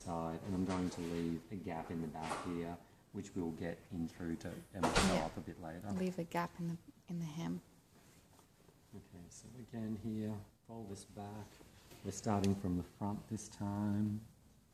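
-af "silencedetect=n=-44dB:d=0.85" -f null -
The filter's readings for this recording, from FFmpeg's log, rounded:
silence_start: 7.58
silence_end: 8.94 | silence_duration: 1.36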